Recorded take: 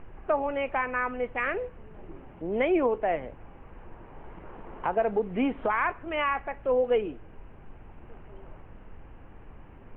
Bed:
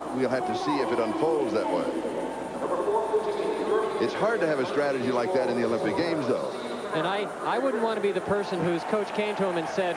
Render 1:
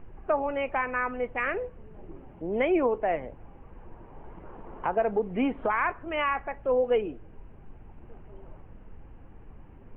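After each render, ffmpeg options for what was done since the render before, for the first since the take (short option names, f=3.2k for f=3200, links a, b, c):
-af "afftdn=nr=6:nf=-49"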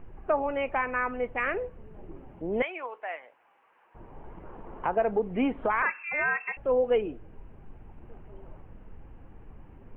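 -filter_complex "[0:a]asettb=1/sr,asplit=3[a][b][c];[a]atrim=end=2.624[d];[b]atrim=start=2.62:end=3.95,asetpts=PTS-STARTPTS,afade=t=in:d=0.004:c=qsin,afade=t=out:st=1.326:d=0.004:c=qsin,highpass=1.2k[e];[c]atrim=start=3.946[f];[d][e]acrossfade=d=0.004:c1=hsin:c2=qsin[g];[g][f]acrossfade=d=0.004:c1=qsin:c2=hsin,asettb=1/sr,asplit=3[h][i][j];[h]atrim=end=5.824[k];[i]atrim=start=5.82:end=6.57,asetpts=PTS-STARTPTS,afade=t=in:d=0.004:c=qsin,afade=t=out:st=0.746:d=0.004:c=qsin,lowpass=f=2.3k:t=q:w=0.5098,lowpass=f=2.3k:t=q:w=0.6013,lowpass=f=2.3k:t=q:w=0.9,lowpass=f=2.3k:t=q:w=2.563,afreqshift=-2700[l];[j]atrim=start=6.566[m];[k][l]acrossfade=d=0.004:c1=hsin:c2=qsin[n];[n][m]acrossfade=d=0.004:c1=qsin:c2=hsin"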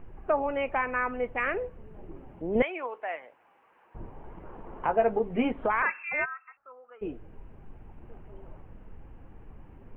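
-filter_complex "[0:a]asettb=1/sr,asplit=3[a][b][c];[a]atrim=end=2.554[d];[b]atrim=start=2.55:end=4.1,asetpts=PTS-STARTPTS,afade=t=in:d=0.004:c=qsin,afade=t=out:st=1.546:d=0.004:c=qsin,lowshelf=f=400:g=8.5[e];[c]atrim=start=4.096[f];[d][e]acrossfade=d=0.004:c1=hsin:c2=qsin[g];[g][f]acrossfade=d=0.004:c1=qsin:c2=hsin,asettb=1/sr,asplit=3[h][i][j];[h]atrim=end=4.874[k];[i]atrim=start=4.87:end=5.52,asetpts=PTS-STARTPTS,afade=t=in:d=0.004:c=qsin,afade=t=out:st=0.646:d=0.004:c=qsin,asplit=2[l][m];[m]adelay=13,volume=-4.5dB[n];[l][n]amix=inputs=2:normalize=0,atrim=end_sample=28665[o];[j]atrim=start=5.516[p];[k][o]acrossfade=d=0.004:c1=hsin:c2=qsin[q];[q][p]acrossfade=d=0.004:c1=qsin:c2=hsin,asplit=3[r][s][t];[r]afade=t=out:st=6.24:d=0.02[u];[s]bandpass=f=1.3k:t=q:w=12,afade=t=in:st=6.24:d=0.02,afade=t=out:st=7.01:d=0.02[v];[t]afade=t=in:st=7.01:d=0.02[w];[u][v][w]amix=inputs=3:normalize=0"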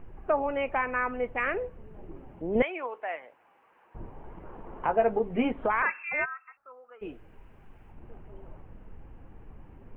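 -filter_complex "[0:a]asettb=1/sr,asplit=3[a][b][c];[a]atrim=end=7.004[d];[b]atrim=start=7:end=7.92,asetpts=PTS-STARTPTS,afade=t=in:d=0.004:c=qsin,afade=t=out:st=0.916:d=0.004:c=qsin,tiltshelf=f=1.1k:g=-5.5[e];[c]atrim=start=7.916[f];[d][e]acrossfade=d=0.004:c1=hsin:c2=qsin[g];[g][f]acrossfade=d=0.004:c1=qsin:c2=hsin"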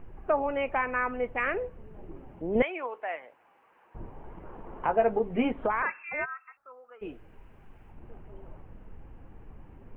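-filter_complex "[0:a]asettb=1/sr,asplit=3[a][b][c];[a]atrim=end=5.674[d];[b]atrim=start=5.67:end=6.29,asetpts=PTS-STARTPTS,afade=t=in:d=0.004:c=qsin,afade=t=out:st=0.616:d=0.004:c=qsin,highshelf=f=2.2k:g=-9[e];[c]atrim=start=6.286[f];[d][e]acrossfade=d=0.004:c1=hsin:c2=qsin[g];[g][f]acrossfade=d=0.004:c1=qsin:c2=hsin"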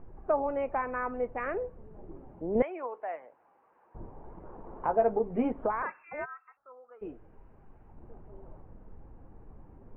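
-af "lowpass=1.1k,lowshelf=f=320:g=-3"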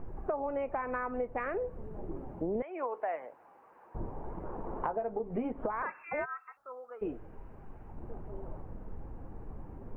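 -filter_complex "[0:a]asplit=2[a][b];[b]alimiter=limit=-23dB:level=0:latency=1:release=209,volume=1dB[c];[a][c]amix=inputs=2:normalize=0,acompressor=threshold=-30dB:ratio=16"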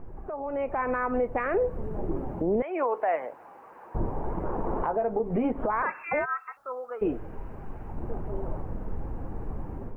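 -af "alimiter=level_in=4dB:limit=-24dB:level=0:latency=1:release=51,volume=-4dB,dynaudnorm=f=410:g=3:m=10dB"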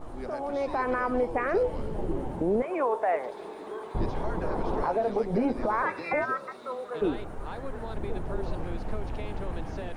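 -filter_complex "[1:a]volume=-13.5dB[a];[0:a][a]amix=inputs=2:normalize=0"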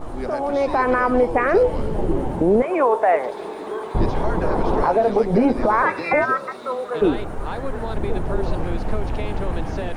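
-af "volume=9.5dB"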